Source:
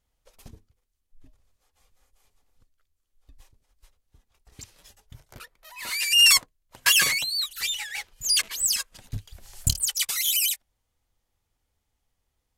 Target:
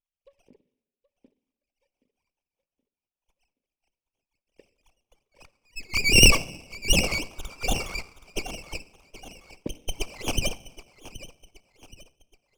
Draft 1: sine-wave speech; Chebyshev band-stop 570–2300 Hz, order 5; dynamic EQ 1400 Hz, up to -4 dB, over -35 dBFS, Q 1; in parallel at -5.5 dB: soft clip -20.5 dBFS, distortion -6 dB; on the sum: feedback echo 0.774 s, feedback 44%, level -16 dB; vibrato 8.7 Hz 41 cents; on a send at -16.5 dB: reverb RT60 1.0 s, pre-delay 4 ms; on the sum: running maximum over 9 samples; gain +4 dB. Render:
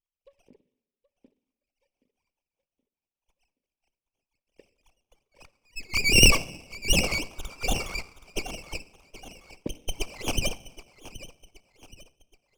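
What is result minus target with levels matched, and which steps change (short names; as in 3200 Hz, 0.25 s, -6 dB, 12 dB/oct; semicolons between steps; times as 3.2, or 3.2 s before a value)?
soft clip: distortion +9 dB
change: soft clip -11 dBFS, distortion -15 dB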